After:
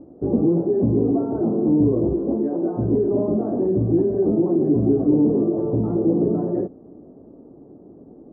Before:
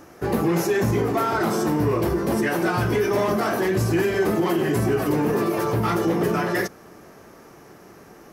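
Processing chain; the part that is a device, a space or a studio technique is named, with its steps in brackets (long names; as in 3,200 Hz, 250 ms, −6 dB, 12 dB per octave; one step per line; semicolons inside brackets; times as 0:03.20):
0:02.13–0:02.79: parametric band 120 Hz −11.5 dB 1.4 octaves
under water (low-pass filter 610 Hz 24 dB per octave; parametric band 270 Hz +10.5 dB 0.46 octaves)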